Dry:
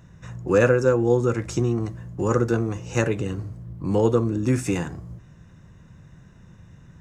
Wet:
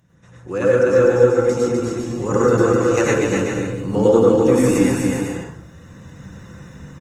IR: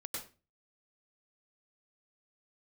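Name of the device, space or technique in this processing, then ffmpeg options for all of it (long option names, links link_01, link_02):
far-field microphone of a smart speaker: -filter_complex "[0:a]highshelf=frequency=7600:gain=5.5,aecho=1:1:250|400|490|544|576.4:0.631|0.398|0.251|0.158|0.1[link_01];[1:a]atrim=start_sample=2205[link_02];[link_01][link_02]afir=irnorm=-1:irlink=0,highpass=frequency=140:poles=1,dynaudnorm=framelen=320:gausssize=5:maxgain=13.5dB,volume=-1dB" -ar 48000 -c:a libopus -b:a 24k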